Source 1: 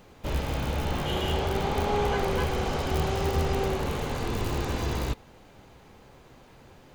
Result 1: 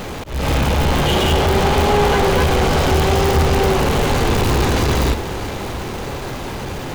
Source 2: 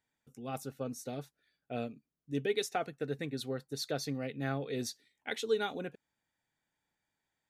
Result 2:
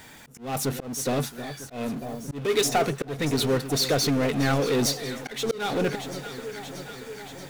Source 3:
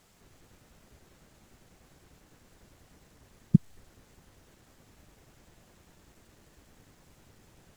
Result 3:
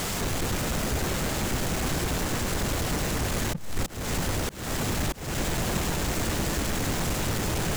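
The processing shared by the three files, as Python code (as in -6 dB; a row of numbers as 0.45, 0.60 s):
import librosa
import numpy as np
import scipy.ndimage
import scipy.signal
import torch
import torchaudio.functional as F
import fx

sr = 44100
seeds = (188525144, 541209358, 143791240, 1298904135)

y = fx.power_curve(x, sr, exponent=0.5)
y = fx.echo_alternate(y, sr, ms=316, hz=1100.0, feedback_pct=82, wet_db=-12.5)
y = fx.auto_swell(y, sr, attack_ms=261.0)
y = F.gain(torch.from_numpy(y), 6.0).numpy()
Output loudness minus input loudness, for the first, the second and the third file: +11.5, +11.0, -1.5 LU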